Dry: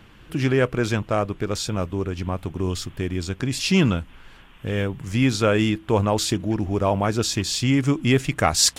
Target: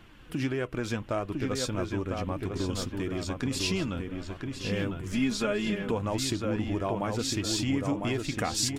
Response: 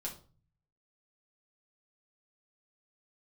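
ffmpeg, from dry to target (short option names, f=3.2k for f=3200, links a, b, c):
-filter_complex "[0:a]acompressor=threshold=-22dB:ratio=6,asplit=2[a][b];[b]adelay=1003,lowpass=f=3.1k:p=1,volume=-4dB,asplit=2[c][d];[d]adelay=1003,lowpass=f=3.1k:p=1,volume=0.43,asplit=2[e][f];[f]adelay=1003,lowpass=f=3.1k:p=1,volume=0.43,asplit=2[g][h];[h]adelay=1003,lowpass=f=3.1k:p=1,volume=0.43,asplit=2[i][j];[j]adelay=1003,lowpass=f=3.1k:p=1,volume=0.43[k];[c][e][g][i][k]amix=inputs=5:normalize=0[l];[a][l]amix=inputs=2:normalize=0,flanger=delay=2.7:depth=1.5:regen=55:speed=1.6:shape=triangular,asettb=1/sr,asplit=3[m][n][o];[m]atrim=end=5.124[p];[n]atrim=start=5.12:end=5.91,asetpts=PTS-STARTPTS,afade=t=in:d=0.004:c=qsin,afade=t=out:st=0.786:d=0.004:c=qsin,aecho=1:1:4.8:0.78,atrim=end_sample=34839[q];[o]atrim=start=5.906[r];[p][q]acrossfade=d=0.004:c1=hsin:c2=qsin[s];[s][r]acrossfade=d=0.004:c1=qsin:c2=hsin"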